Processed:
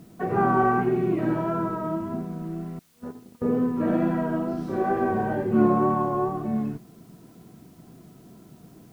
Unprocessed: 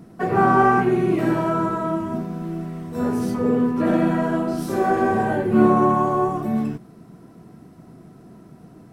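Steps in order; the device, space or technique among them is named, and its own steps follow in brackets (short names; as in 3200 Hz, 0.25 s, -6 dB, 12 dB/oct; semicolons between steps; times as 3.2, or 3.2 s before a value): 2.79–3.42 gate -19 dBFS, range -33 dB; cassette deck with a dirty head (tape spacing loss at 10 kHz 23 dB; wow and flutter 28 cents; white noise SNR 37 dB); gain -3.5 dB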